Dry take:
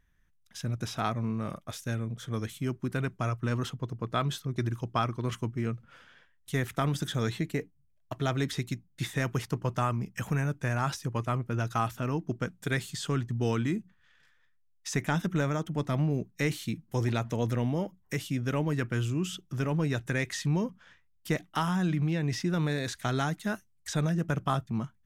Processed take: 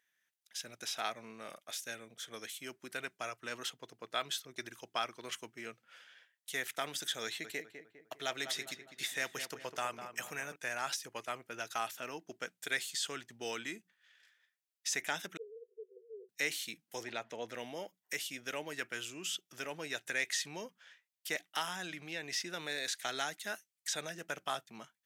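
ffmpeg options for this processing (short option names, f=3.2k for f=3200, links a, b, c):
-filter_complex "[0:a]asettb=1/sr,asplit=3[a][b][c];[a]atrim=end=7.244[d];[b]atrim=start=7.24:end=10.56,asetpts=PTS-STARTPTS,afade=t=in:d=0.004:c=qsin,afade=t=out:st=3.316:d=0.004:c=qsin,asplit=2[e][f];[f]adelay=202,lowpass=f=1.8k:p=1,volume=-8.5dB,asplit=2[g][h];[h]adelay=202,lowpass=f=1.8k:p=1,volume=0.49,asplit=2[i][j];[j]adelay=202,lowpass=f=1.8k:p=1,volume=0.49,asplit=2[k][l];[l]adelay=202,lowpass=f=1.8k:p=1,volume=0.49,asplit=2[m][n];[n]adelay=202,lowpass=f=1.8k:p=1,volume=0.49,asplit=2[o][p];[p]adelay=202,lowpass=f=1.8k:p=1,volume=0.49[q];[e][g][i][k][m][o][q]amix=inputs=7:normalize=0,atrim=end_sample=146412[r];[c]atrim=start=10.556[s];[d][r]acrossfade=d=0.004:c1=hsin:c2=qsin[t];[t][s]acrossfade=d=0.004:c1=qsin:c2=hsin,asettb=1/sr,asplit=3[u][v][w];[u]atrim=end=15.374[x];[v]atrim=start=15.37:end=16.29,asetpts=PTS-STARTPTS,afade=t=in:d=0.004:c=qsin,afade=t=out:st=0.916:d=0.004:c=qsin,asuperpass=centerf=430:order=20:qfactor=3.6[y];[w]atrim=start=16.286[z];[x][y]acrossfade=d=0.004:c1=hsin:c2=qsin[aa];[aa][z]acrossfade=d=0.004:c1=qsin:c2=hsin,asettb=1/sr,asplit=3[ab][ac][ad];[ab]atrim=end=17.034[ae];[ac]atrim=start=17.03:end=17.54,asetpts=PTS-STARTPTS,afade=t=in:d=0.004:c=qsin,afade=t=out:st=0.506:d=0.004:c=qsin,aemphasis=mode=reproduction:type=75kf[af];[ad]atrim=start=17.536[ag];[ae][af]acrossfade=d=0.004:c1=hsin:c2=qsin[ah];[ah][ag]acrossfade=d=0.004:c1=qsin:c2=hsin,highpass=830,equalizer=f=1.1k:t=o:w=0.87:g=-11,volume=2dB"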